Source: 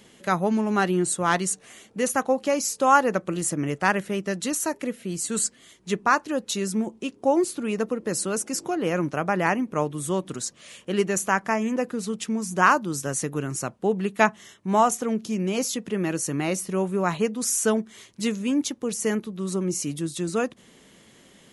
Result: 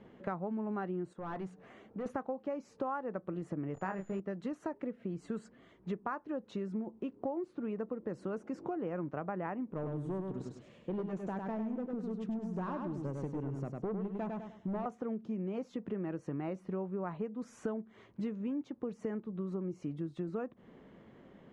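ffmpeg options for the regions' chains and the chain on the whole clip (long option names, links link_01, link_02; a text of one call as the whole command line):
ffmpeg -i in.wav -filter_complex "[0:a]asettb=1/sr,asplit=3[link_01][link_02][link_03];[link_01]atrim=end=1.134[link_04];[link_02]atrim=start=1.13:end=2.06,asetpts=PTS-STARTPTS,afade=type=in:duration=0.004:curve=qsin,afade=type=out:start_time=0.926:duration=0.004:curve=qsin,asoftclip=type=hard:threshold=-24dB,bandreject=frequency=60:width_type=h:width=6,bandreject=frequency=120:width_type=h:width=6,bandreject=frequency=180:width_type=h:width=6,acompressor=threshold=-38dB:ratio=2.5:attack=3.2:release=140:knee=1:detection=peak[link_05];[link_03]atrim=start=2.056[link_06];[link_04][link_05]acrossfade=duration=0.004:curve1=hsin:curve2=qsin[link_07];[link_07][link_06]acrossfade=duration=0.004:curve1=qsin:curve2=hsin,asettb=1/sr,asplit=3[link_08][link_09][link_10];[link_08]atrim=end=3.744[link_11];[link_09]atrim=start=3.74:end=4.2,asetpts=PTS-STARTPTS,afade=type=in:duration=0.004:curve=qsin,afade=type=out:start_time=0.456:duration=0.004:curve=qsin,acrusher=bits=7:dc=4:mix=0:aa=0.000001,aeval=exprs='val(0)+0.0316*sin(2*PI*7000*n/s)':channel_layout=same,asplit=2[link_12][link_13];[link_13]adelay=26,volume=-5dB[link_14];[link_12][link_14]amix=inputs=2:normalize=0,atrim=end_sample=20286[link_15];[link_10]atrim=start=4.196[link_16];[link_11][link_15]acrossfade=duration=0.004:curve1=hsin:curve2=qsin[link_17];[link_17][link_16]acrossfade=duration=0.004:curve1=qsin:curve2=hsin,asettb=1/sr,asplit=3[link_18][link_19][link_20];[link_18]atrim=end=9.734[link_21];[link_19]atrim=start=9.73:end=14.86,asetpts=PTS-STARTPTS,afade=type=in:duration=0.004:curve=qsin,afade=type=out:start_time=5.126:duration=0.004:curve=qsin,equalizer=frequency=1400:width=0.68:gain=-10,asoftclip=type=hard:threshold=-25dB,aecho=1:1:101|202|303|404:0.562|0.169|0.0506|0.0152,atrim=end_sample=226233[link_22];[link_20]atrim=start=14.856[link_23];[link_21][link_22]acrossfade=duration=0.004:curve1=hsin:curve2=qsin[link_24];[link_24][link_23]acrossfade=duration=0.004:curve1=qsin:curve2=hsin,lowpass=1200,acompressor=threshold=-34dB:ratio=6,volume=-1dB" out.wav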